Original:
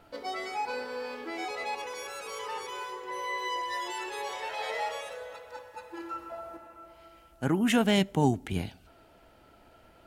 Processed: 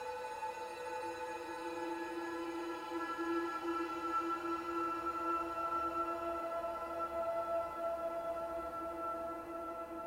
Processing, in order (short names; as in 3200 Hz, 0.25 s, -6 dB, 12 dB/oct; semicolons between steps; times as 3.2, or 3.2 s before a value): Paulstretch 11×, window 0.50 s, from 5.7; gain +1.5 dB